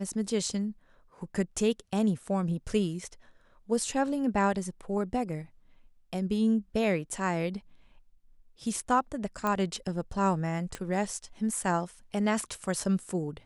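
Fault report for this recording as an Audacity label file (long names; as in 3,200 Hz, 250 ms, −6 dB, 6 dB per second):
9.470000	9.470000	click −16 dBFS
10.750000	10.750000	click −20 dBFS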